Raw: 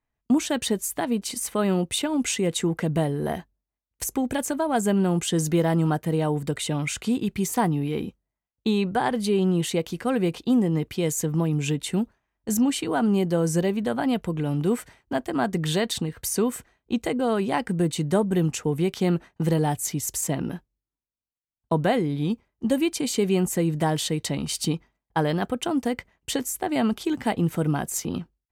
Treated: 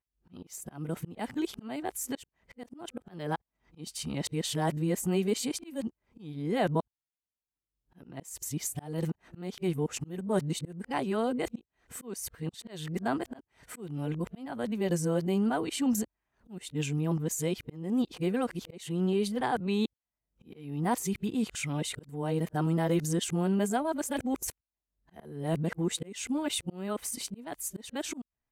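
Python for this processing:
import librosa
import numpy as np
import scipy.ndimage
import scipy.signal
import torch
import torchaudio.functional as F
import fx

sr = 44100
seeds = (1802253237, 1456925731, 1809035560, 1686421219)

y = np.flip(x).copy()
y = fx.auto_swell(y, sr, attack_ms=337.0)
y = F.gain(torch.from_numpy(y), -6.0).numpy()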